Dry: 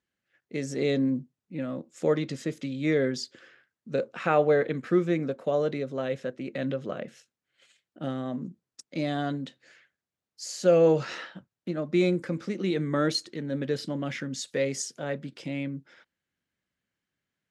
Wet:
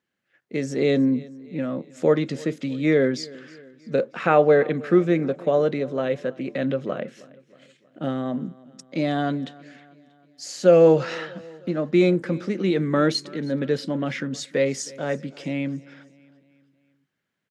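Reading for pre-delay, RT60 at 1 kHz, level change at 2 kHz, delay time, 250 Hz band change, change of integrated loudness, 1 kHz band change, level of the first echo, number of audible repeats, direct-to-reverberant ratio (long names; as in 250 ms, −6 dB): no reverb audible, no reverb audible, +5.0 dB, 317 ms, +6.0 dB, +5.5 dB, +5.5 dB, −22.0 dB, 3, no reverb audible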